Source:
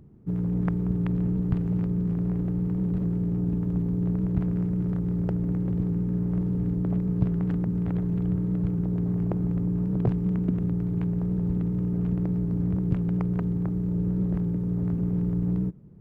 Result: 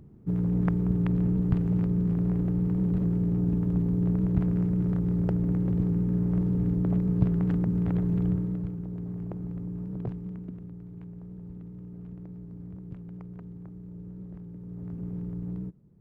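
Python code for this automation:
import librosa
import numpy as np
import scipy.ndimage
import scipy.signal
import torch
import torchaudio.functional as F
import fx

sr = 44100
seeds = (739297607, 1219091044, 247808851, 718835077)

y = fx.gain(x, sr, db=fx.line((8.27, 0.5), (8.78, -9.0), (10.02, -9.0), (10.69, -16.0), (14.48, -16.0), (15.05, -9.0)))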